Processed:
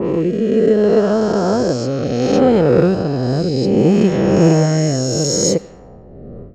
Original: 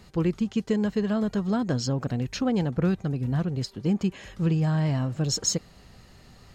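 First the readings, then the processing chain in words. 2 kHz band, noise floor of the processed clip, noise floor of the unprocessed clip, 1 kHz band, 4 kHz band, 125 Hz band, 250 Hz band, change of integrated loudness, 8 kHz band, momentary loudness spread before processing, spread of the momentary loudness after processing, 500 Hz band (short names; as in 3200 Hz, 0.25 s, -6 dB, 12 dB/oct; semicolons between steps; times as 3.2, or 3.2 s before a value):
+10.0 dB, -39 dBFS, -52 dBFS, +13.5 dB, +8.5 dB, +8.0 dB, +10.5 dB, +12.0 dB, +10.0 dB, 5 LU, 6 LU, +18.0 dB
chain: spectral swells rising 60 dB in 2.85 s; low-pass opened by the level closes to 520 Hz, open at -18 dBFS; bell 500 Hz +12 dB 2.1 oct; AGC gain up to 16 dB; rotary speaker horn 0.65 Hz; tape echo 91 ms, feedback 57%, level -23 dB, low-pass 5700 Hz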